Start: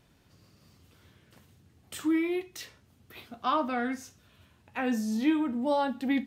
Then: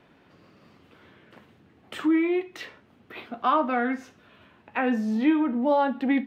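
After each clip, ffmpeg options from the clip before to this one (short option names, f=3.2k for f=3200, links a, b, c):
-filter_complex "[0:a]acrossover=split=190 3100:gain=0.158 1 0.0891[a][b][c];[a][b][c]amix=inputs=3:normalize=0,asplit=2[d][e];[e]acompressor=threshold=-37dB:ratio=6,volume=2dB[f];[d][f]amix=inputs=2:normalize=0,volume=3dB"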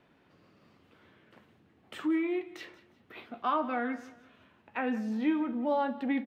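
-af "aecho=1:1:179|358|537:0.126|0.0428|0.0146,volume=-7dB"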